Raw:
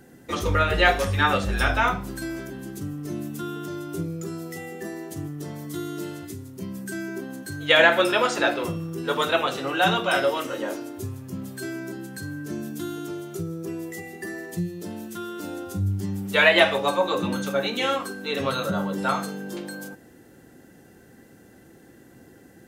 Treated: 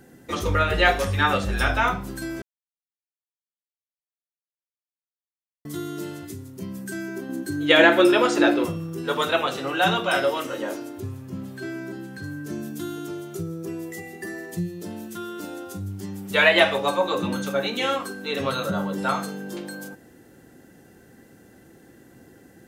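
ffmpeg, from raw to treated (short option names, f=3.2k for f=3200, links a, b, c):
-filter_complex "[0:a]asettb=1/sr,asplit=3[a][b][c];[a]atrim=end=7.294[d];[b]atrim=start=7.29:end=8.65,asetpts=PTS-STARTPTS,afade=t=in:d=0.004:c=qsin,afade=t=out:st=1.356:d=0.004:c=qsin,equalizer=f=320:w=2.7:g=13.5[e];[c]atrim=start=8.646[f];[d][e]acrossfade=d=0.004:c1=hsin:c2=qsin[g];[g][f]acrossfade=d=0.004:c1=qsin:c2=hsin,asettb=1/sr,asplit=3[h][i][j];[h]atrim=end=11.004[k];[i]atrim=start=11:end=12.24,asetpts=PTS-STARTPTS,afade=t=in:d=0.004:c=qsin,afade=t=out:st=1.236:d=0.004:c=qsin,acrossover=split=4300[l][m];[m]acompressor=threshold=-55dB:ratio=4:attack=1:release=60[n];[l][n]amix=inputs=2:normalize=0[o];[j]atrim=start=12.236[p];[k][o]acrossfade=d=0.004:c1=hsin:c2=qsin[q];[q][p]acrossfade=d=0.004:c1=qsin:c2=hsin,asettb=1/sr,asplit=3[r][s][t];[r]atrim=end=15.454[u];[s]atrim=start=15.45:end=16.31,asetpts=PTS-STARTPTS,afade=t=in:d=0.004:c=qsin,afade=t=out:st=0.856:d=0.004:c=qsin,lowshelf=f=150:g=-12[v];[t]atrim=start=16.306[w];[u][v]acrossfade=d=0.004:c1=hsin:c2=qsin[x];[x][w]acrossfade=d=0.004:c1=qsin:c2=hsin,asplit=3[y][z][aa];[y]atrim=end=2.42,asetpts=PTS-STARTPTS,afade=t=out:st=2.416:d=0.004:c=hsin[ab];[z]atrim=start=2.42:end=5.65,asetpts=PTS-STARTPTS,volume=0[ac];[aa]atrim=start=5.65,asetpts=PTS-STARTPTS,afade=t=in:d=0.004:c=hsin[ad];[ab][ac][ad]concat=n=3:v=0:a=1"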